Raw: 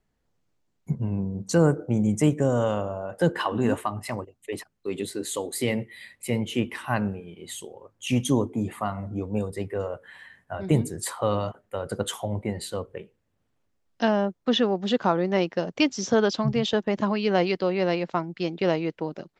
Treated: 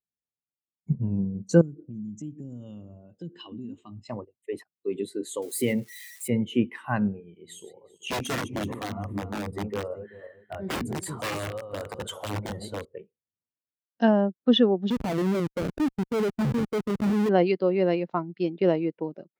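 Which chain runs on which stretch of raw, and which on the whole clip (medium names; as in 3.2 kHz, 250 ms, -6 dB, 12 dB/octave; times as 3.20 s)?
1.61–4.10 s: elliptic low-pass 7.4 kHz + high-order bell 990 Hz -15 dB 2.5 oct + compression 5:1, threshold -32 dBFS
5.42–6.28 s: zero-crossing glitches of -26.5 dBFS + tape noise reduction on one side only encoder only
7.22–12.85 s: backward echo that repeats 191 ms, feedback 53%, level -9 dB + peaking EQ 67 Hz +5 dB 0.99 oct + integer overflow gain 20 dB
14.90–17.29 s: low-pass 1.2 kHz 24 dB/octave + Schmitt trigger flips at -31 dBFS
whole clip: high-pass 120 Hz 6 dB/octave; dynamic bell 640 Hz, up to -3 dB, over -32 dBFS, Q 1.2; spectral contrast expander 1.5:1; trim +4.5 dB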